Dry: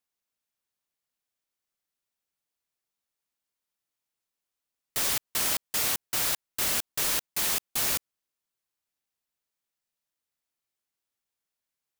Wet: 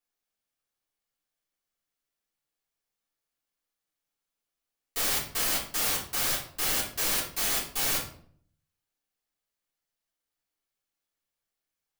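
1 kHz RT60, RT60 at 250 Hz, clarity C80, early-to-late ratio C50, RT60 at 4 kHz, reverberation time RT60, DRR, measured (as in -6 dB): 0.55 s, 0.80 s, 12.0 dB, 6.5 dB, 0.40 s, 0.60 s, -7.5 dB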